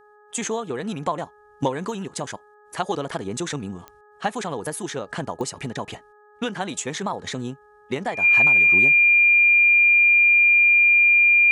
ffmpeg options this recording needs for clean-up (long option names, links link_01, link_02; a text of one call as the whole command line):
ffmpeg -i in.wav -af "adeclick=threshold=4,bandreject=frequency=418.6:width_type=h:width=4,bandreject=frequency=837.2:width_type=h:width=4,bandreject=frequency=1255.8:width_type=h:width=4,bandreject=frequency=1674.4:width_type=h:width=4,bandreject=frequency=2400:width=30" out.wav